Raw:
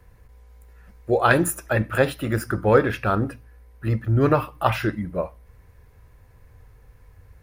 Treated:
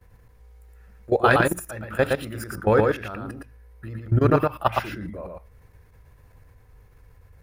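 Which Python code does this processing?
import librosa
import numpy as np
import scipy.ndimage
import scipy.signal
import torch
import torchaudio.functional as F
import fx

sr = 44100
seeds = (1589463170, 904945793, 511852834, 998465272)

y = fx.level_steps(x, sr, step_db=18)
y = y + 10.0 ** (-3.0 / 20.0) * np.pad(y, (int(115 * sr / 1000.0), 0))[:len(y)]
y = y * 10.0 ** (1.5 / 20.0)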